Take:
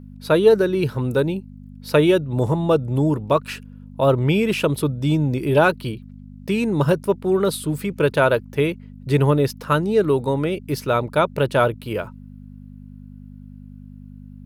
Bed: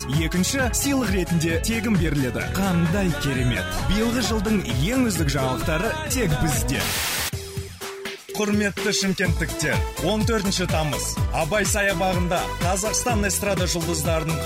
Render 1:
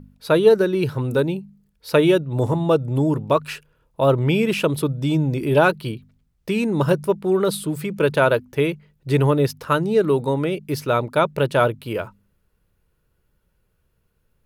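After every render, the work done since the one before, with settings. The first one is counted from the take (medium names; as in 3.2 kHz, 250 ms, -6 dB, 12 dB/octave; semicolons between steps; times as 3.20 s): de-hum 50 Hz, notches 5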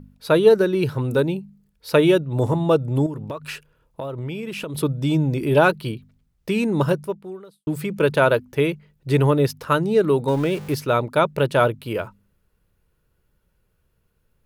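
3.06–4.75 s: compression 12:1, threshold -26 dBFS; 6.81–7.67 s: fade out quadratic; 10.28–10.75 s: jump at every zero crossing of -32 dBFS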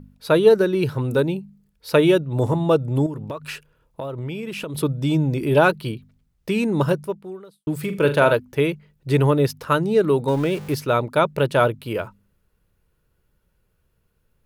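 7.79–8.33 s: flutter echo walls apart 7.1 m, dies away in 0.28 s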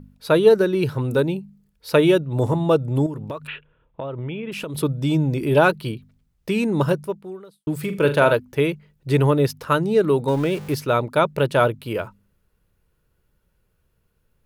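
3.47–4.52 s: steep low-pass 3.6 kHz 72 dB/octave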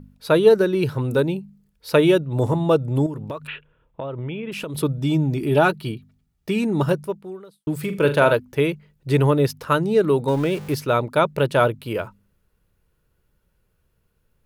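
4.98–6.89 s: comb of notches 520 Hz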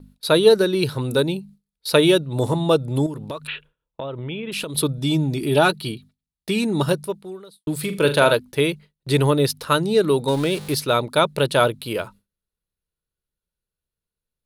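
gate with hold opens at -36 dBFS; fifteen-band graphic EQ 100 Hz -4 dB, 4 kHz +11 dB, 10 kHz +11 dB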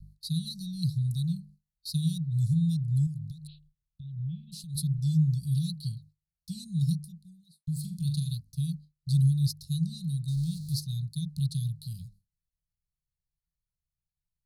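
Chebyshev band-stop 170–4200 Hz, order 5; treble shelf 3.2 kHz -12 dB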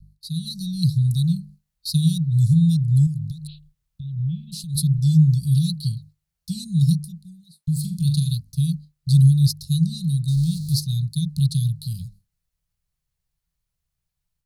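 level rider gain up to 9.5 dB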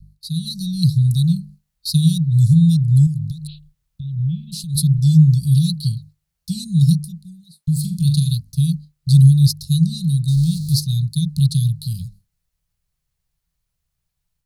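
trim +4 dB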